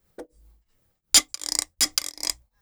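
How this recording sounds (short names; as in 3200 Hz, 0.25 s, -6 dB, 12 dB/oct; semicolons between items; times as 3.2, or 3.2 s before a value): tremolo triangle 2.7 Hz, depth 95%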